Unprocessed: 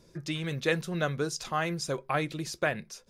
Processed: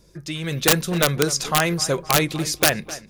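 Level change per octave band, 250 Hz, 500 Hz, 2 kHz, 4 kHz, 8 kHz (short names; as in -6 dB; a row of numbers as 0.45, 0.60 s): +9.0, +8.0, +8.5, +15.0, +17.5 dB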